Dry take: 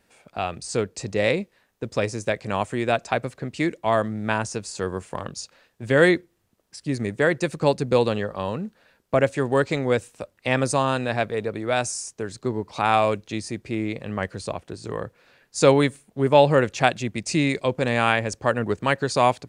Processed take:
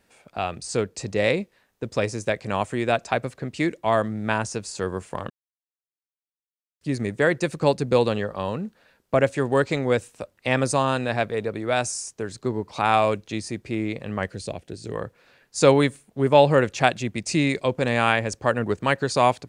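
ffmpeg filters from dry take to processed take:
-filter_complex "[0:a]asettb=1/sr,asplit=3[s0][s1][s2];[s0]atrim=end=14.324[s3];[s1]atrim=start=14.32:end=14.95,asetpts=PTS-STARTPTS,afade=t=in:d=0.004:c=qsin,afade=t=out:st=0.626:d=0.004:c=qsin,equalizer=f=1100:t=o:w=0.85:g=-12[s4];[s2]atrim=start=14.946[s5];[s3][s4]acrossfade=d=0.004:c1=hsin:c2=qsin[s6];[s6][s5]acrossfade=d=0.004:c1=qsin:c2=hsin,asplit=3[s7][s8][s9];[s7]atrim=end=5.3,asetpts=PTS-STARTPTS,afade=t=out:st=5.296:d=0.004:c=hsin[s10];[s8]atrim=start=5.3:end=6.81,asetpts=PTS-STARTPTS,volume=0[s11];[s9]atrim=start=6.81,asetpts=PTS-STARTPTS,afade=t=in:d=0.004:c=hsin[s12];[s10][s11][s12]concat=n=3:v=0:a=1"

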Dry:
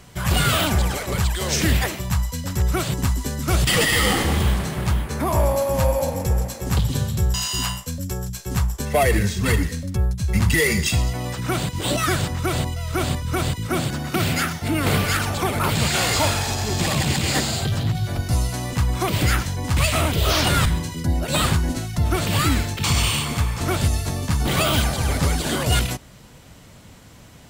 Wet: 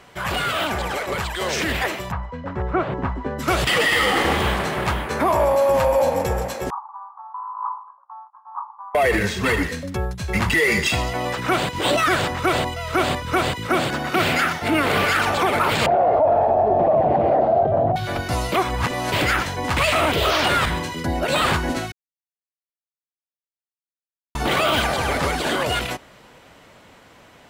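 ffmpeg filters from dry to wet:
-filter_complex "[0:a]asplit=3[s0][s1][s2];[s0]afade=t=out:st=2.1:d=0.02[s3];[s1]lowpass=1300,afade=t=in:st=2.1:d=0.02,afade=t=out:st=3.38:d=0.02[s4];[s2]afade=t=in:st=3.38:d=0.02[s5];[s3][s4][s5]amix=inputs=3:normalize=0,asettb=1/sr,asplit=3[s6][s7][s8];[s6]atrim=end=6.704[s9];[s7]atrim=start=6.7:end=8.95,asetpts=PTS-STARTPTS,afade=t=in:d=0.004:c=qsin,afade=t=out:st=2.246:d=0.004:c=qsin,asuperpass=centerf=1000:order=8:qfactor=2.5[s10];[s8]atrim=start=8.946[s11];[s9][s10]acrossfade=d=0.004:c1=hsin:c2=qsin[s12];[s12][s11]acrossfade=d=0.004:c1=qsin:c2=hsin,asettb=1/sr,asplit=3[s13][s14][s15];[s13]atrim=end=15.864[s16];[s14]atrim=start=15.86:end=17.96,asetpts=PTS-STARTPTS,afade=t=in:d=0.004:c=qsin,afade=t=out:st=2.096:d=0.004:c=qsin,lowpass=f=660:t=q:w=6.9[s17];[s15]atrim=start=17.956[s18];[s16][s17]acrossfade=d=0.004:c1=hsin:c2=qsin[s19];[s19][s18]acrossfade=d=0.004:c1=qsin:c2=hsin,asplit=5[s20][s21][s22][s23][s24];[s20]atrim=end=18.522[s25];[s21]atrim=start=18.518:end=19.122,asetpts=PTS-STARTPTS,areverse[s26];[s22]atrim=start=19.118:end=21.92,asetpts=PTS-STARTPTS,afade=t=out:st=2.798:d=0.004:c=hsin[s27];[s23]atrim=start=21.92:end=24.35,asetpts=PTS-STARTPTS,volume=0[s28];[s24]atrim=start=24.35,asetpts=PTS-STARTPTS,afade=t=in:d=0.004:c=hsin[s29];[s25][s26]acrossfade=d=0.004:c1=hsin:c2=hsin[s30];[s27][s28][s29]concat=n=3:v=0:a=1[s31];[s30][s31]acrossfade=d=0.004:c1=hsin:c2=hsin,bass=f=250:g=-15,treble=f=4000:g=-12,alimiter=limit=0.119:level=0:latency=1:release=38,dynaudnorm=f=210:g=21:m=1.68,volume=1.58"

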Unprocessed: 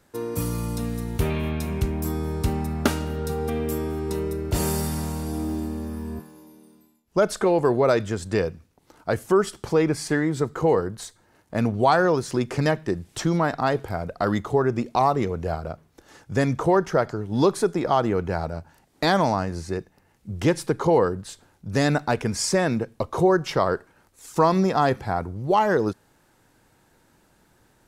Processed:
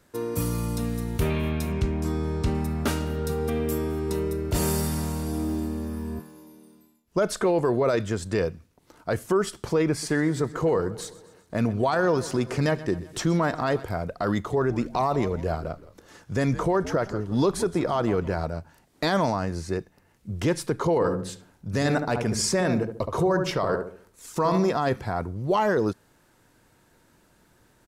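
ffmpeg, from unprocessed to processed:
-filter_complex "[0:a]asettb=1/sr,asplit=3[s0][s1][s2];[s0]atrim=end=1.724[s3];[s1]atrim=start=1.72:end=2.55,asetpts=PTS-STARTPTS,afade=t=in:d=0.004:c=qsin,afade=t=out:st=0.826:d=0.004:c=qsin,lowpass=6700[s4];[s2]atrim=start=2.546[s5];[s3][s4]acrossfade=d=0.004:c1=hsin:c2=qsin[s6];[s6][s5]acrossfade=d=0.004:c1=qsin:c2=hsin,asettb=1/sr,asplit=3[s7][s8][s9];[s7]atrim=end=9.904[s10];[s8]atrim=start=9.9:end=13.84,asetpts=PTS-STARTPTS,afade=t=in:d=0.004:c=qsin,afade=t=out:st=3.936:d=0.004:c=qsin,aecho=1:1:127|254|381|508|635:0.112|0.0617|0.0339|0.0187|0.0103,atrim=end_sample=173754[s11];[s9]atrim=start=13.836[s12];[s10][s11]acrossfade=d=0.004:c1=hsin:c2=qsin[s13];[s13][s12]acrossfade=d=0.004:c1=qsin:c2=hsin,asplit=3[s14][s15][s16];[s14]afade=t=out:st=14.52:d=0.02[s17];[s15]asplit=4[s18][s19][s20][s21];[s19]adelay=167,afreqshift=-90,volume=0.141[s22];[s20]adelay=334,afreqshift=-180,volume=0.0495[s23];[s21]adelay=501,afreqshift=-270,volume=0.0174[s24];[s18][s22][s23][s24]amix=inputs=4:normalize=0,afade=t=in:st=14.52:d=0.02,afade=t=out:st=18.42:d=0.02[s25];[s16]afade=t=in:st=18.42:d=0.02[s26];[s17][s25][s26]amix=inputs=3:normalize=0,asplit=3[s27][s28][s29];[s27]afade=t=out:st=21:d=0.02[s30];[s28]asplit=2[s31][s32];[s32]adelay=71,lowpass=f=960:p=1,volume=0.501,asplit=2[s33][s34];[s34]adelay=71,lowpass=f=960:p=1,volume=0.43,asplit=2[s35][s36];[s36]adelay=71,lowpass=f=960:p=1,volume=0.43,asplit=2[s37][s38];[s38]adelay=71,lowpass=f=960:p=1,volume=0.43,asplit=2[s39][s40];[s40]adelay=71,lowpass=f=960:p=1,volume=0.43[s41];[s31][s33][s35][s37][s39][s41]amix=inputs=6:normalize=0,afade=t=in:st=21:d=0.02,afade=t=out:st=24.7:d=0.02[s42];[s29]afade=t=in:st=24.7:d=0.02[s43];[s30][s42][s43]amix=inputs=3:normalize=0,bandreject=f=810:w=12,alimiter=limit=0.188:level=0:latency=1:release=13"

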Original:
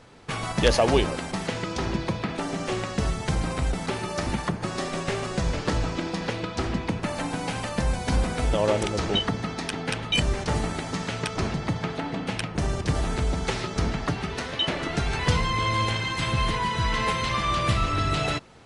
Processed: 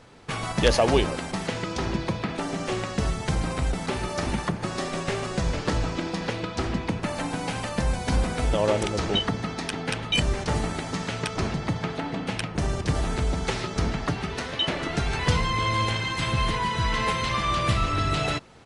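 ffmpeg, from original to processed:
-filter_complex "[0:a]asplit=2[s0][s1];[s1]afade=t=in:st=3.56:d=0.01,afade=t=out:st=4.11:d=0.01,aecho=0:1:340|680|1020:0.334965|0.10049|0.0301469[s2];[s0][s2]amix=inputs=2:normalize=0"

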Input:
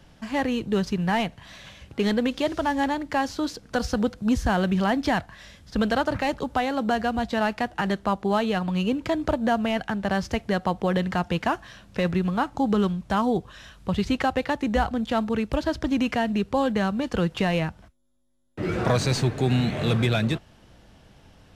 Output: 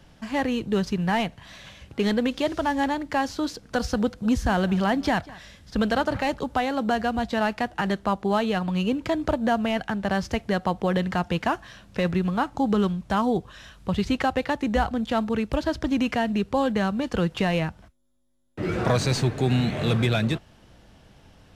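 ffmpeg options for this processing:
-filter_complex "[0:a]asettb=1/sr,asplit=3[s0][s1][s2];[s0]atrim=end=4.034[s3];[s1]atrim=start=4.03:end=6.33,asetpts=PTS-STARTPTS,afade=t=in:d=0.004:c=qsin,afade=t=out:st=2.296:d=0.004:c=qsin,aecho=1:1:195:0.0891,atrim=end_sample=101430[s4];[s2]atrim=start=6.326[s5];[s3][s4]acrossfade=d=0.004:c1=hsin:c2=qsin[s6];[s6][s5]acrossfade=d=0.004:c1=qsin:c2=hsin"

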